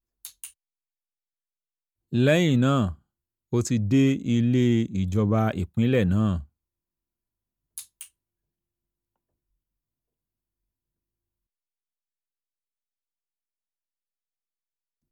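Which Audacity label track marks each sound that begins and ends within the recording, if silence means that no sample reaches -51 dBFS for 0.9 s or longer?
2.120000	6.460000	sound
7.780000	8.080000	sound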